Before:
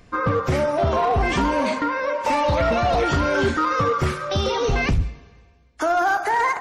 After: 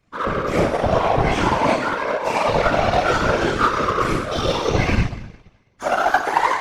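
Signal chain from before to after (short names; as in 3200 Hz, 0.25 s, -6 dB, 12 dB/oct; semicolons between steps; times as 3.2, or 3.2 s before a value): two-slope reverb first 0.92 s, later 2.5 s, DRR -5.5 dB; power-law curve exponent 1.4; whisperiser; gain -1 dB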